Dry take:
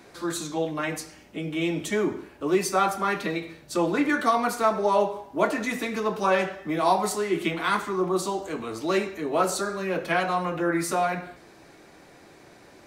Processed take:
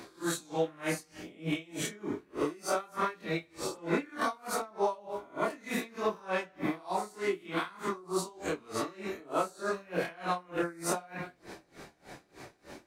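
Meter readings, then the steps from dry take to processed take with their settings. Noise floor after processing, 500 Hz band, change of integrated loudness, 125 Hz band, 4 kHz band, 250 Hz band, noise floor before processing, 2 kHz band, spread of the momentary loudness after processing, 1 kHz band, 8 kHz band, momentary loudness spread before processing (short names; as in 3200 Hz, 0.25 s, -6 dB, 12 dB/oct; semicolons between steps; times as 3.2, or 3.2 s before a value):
-64 dBFS, -8.5 dB, -8.5 dB, -7.0 dB, -7.0 dB, -9.0 dB, -52 dBFS, -8.5 dB, 14 LU, -9.5 dB, -6.0 dB, 8 LU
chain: spectral swells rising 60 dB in 0.51 s; compressor 4:1, threshold -30 dBFS, peak gain reduction 13 dB; chorus voices 2, 0.65 Hz, delay 26 ms, depth 3.9 ms; dB-linear tremolo 3.3 Hz, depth 26 dB; gain +7 dB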